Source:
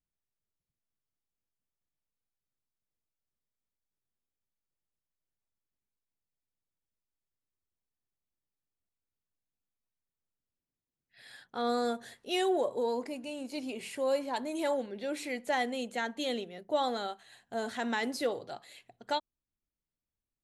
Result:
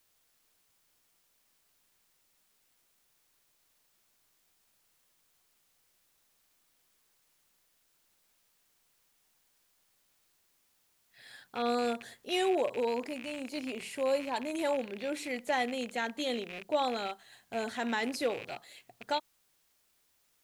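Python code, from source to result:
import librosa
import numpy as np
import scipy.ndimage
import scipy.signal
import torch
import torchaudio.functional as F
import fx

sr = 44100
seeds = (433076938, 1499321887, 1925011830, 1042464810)

y = fx.rattle_buzz(x, sr, strikes_db=-54.0, level_db=-32.0)
y = fx.quant_dither(y, sr, seeds[0], bits=12, dither='triangular')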